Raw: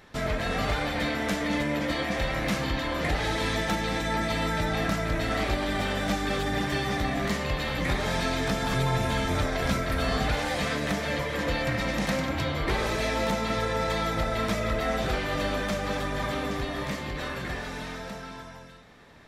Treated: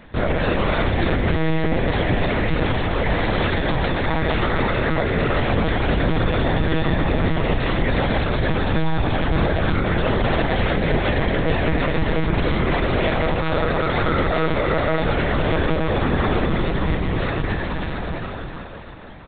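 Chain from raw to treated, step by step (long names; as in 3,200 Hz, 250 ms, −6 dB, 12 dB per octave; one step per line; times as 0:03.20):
parametric band 150 Hz +7 dB 3 octaves
hum removal 53.69 Hz, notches 6
brickwall limiter −17.5 dBFS, peak gain reduction 7 dB
repeating echo 325 ms, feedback 60%, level −9 dB
one-pitch LPC vocoder at 8 kHz 160 Hz
level +6.5 dB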